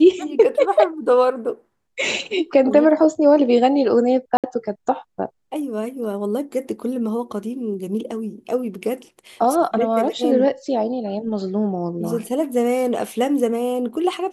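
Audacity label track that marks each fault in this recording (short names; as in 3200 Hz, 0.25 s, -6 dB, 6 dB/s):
4.370000	4.440000	gap 67 ms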